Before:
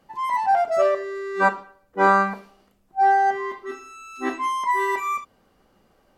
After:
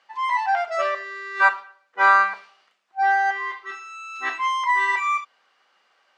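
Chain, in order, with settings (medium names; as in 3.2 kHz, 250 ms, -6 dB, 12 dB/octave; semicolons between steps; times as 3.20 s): high-pass 1.5 kHz 12 dB/octave; distance through air 130 m; trim +9 dB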